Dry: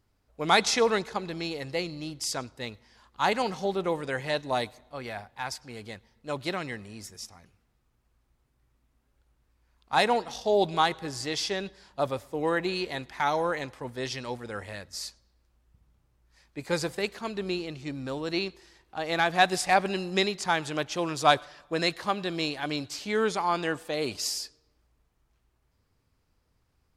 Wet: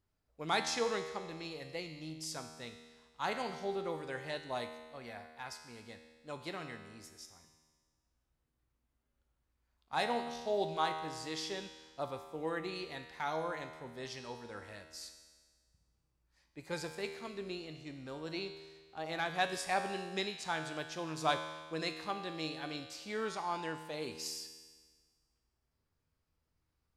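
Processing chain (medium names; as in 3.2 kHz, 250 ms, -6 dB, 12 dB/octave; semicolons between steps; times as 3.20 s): feedback comb 79 Hz, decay 1.5 s, harmonics all, mix 80%; trim +1 dB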